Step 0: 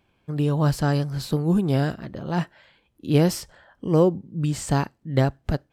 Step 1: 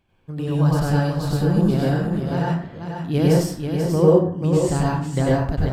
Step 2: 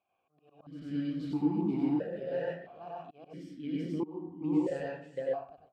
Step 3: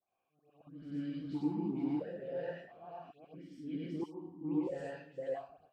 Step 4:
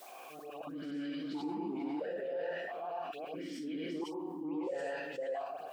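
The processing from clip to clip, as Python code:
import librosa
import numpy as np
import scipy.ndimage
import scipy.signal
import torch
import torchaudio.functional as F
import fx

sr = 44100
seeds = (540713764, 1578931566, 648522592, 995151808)

y1 = fx.low_shelf(x, sr, hz=89.0, db=8.5)
y1 = y1 + 10.0 ** (-6.5 / 20.0) * np.pad(y1, (int(488 * sr / 1000.0), 0))[:len(y1)]
y1 = fx.rev_plate(y1, sr, seeds[0], rt60_s=0.56, hf_ratio=0.55, predelay_ms=80, drr_db=-4.5)
y1 = y1 * librosa.db_to_amplitude(-4.5)
y2 = fx.fade_out_tail(y1, sr, length_s=0.94)
y2 = fx.auto_swell(y2, sr, attack_ms=544.0)
y2 = fx.vowel_held(y2, sr, hz=1.5)
y3 = fx.dispersion(y2, sr, late='highs', ms=121.0, hz=2200.0)
y3 = y3 * librosa.db_to_amplitude(-5.5)
y4 = scipy.signal.sosfilt(scipy.signal.butter(2, 420.0, 'highpass', fs=sr, output='sos'), y3)
y4 = fx.env_flatten(y4, sr, amount_pct=70)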